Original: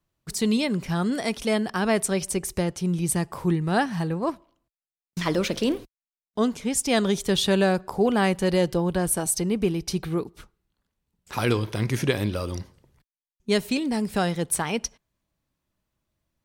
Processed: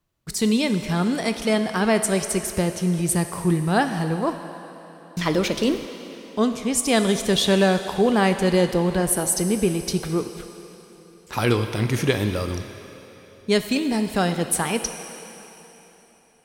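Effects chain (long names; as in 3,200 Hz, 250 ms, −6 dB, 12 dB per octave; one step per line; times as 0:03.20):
on a send: low-shelf EQ 260 Hz −10.5 dB + convolution reverb RT60 3.6 s, pre-delay 7 ms, DRR 7.5 dB
on the sum: level +2.5 dB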